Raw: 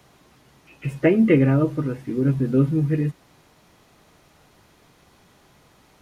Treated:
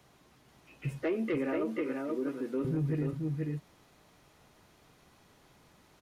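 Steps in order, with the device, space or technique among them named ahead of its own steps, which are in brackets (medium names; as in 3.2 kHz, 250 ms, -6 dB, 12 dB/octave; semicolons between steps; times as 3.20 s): 1.03–2.65 s: high-pass 290 Hz 24 dB/octave; delay 482 ms -5 dB; soft clipper into limiter (saturation -12 dBFS, distortion -18 dB; peak limiter -17.5 dBFS, peak gain reduction 5 dB); trim -7.5 dB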